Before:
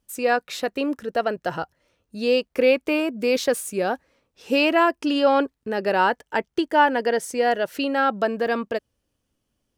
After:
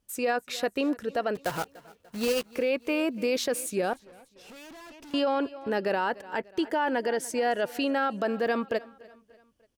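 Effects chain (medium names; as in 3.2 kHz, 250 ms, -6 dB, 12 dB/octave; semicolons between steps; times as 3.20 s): 1.35–2.53 s: block-companded coder 3-bit; feedback delay 294 ms, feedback 47%, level -23 dB; peak limiter -16.5 dBFS, peak gain reduction 10.5 dB; 3.93–5.14 s: valve stage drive 44 dB, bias 0.45; trim -2 dB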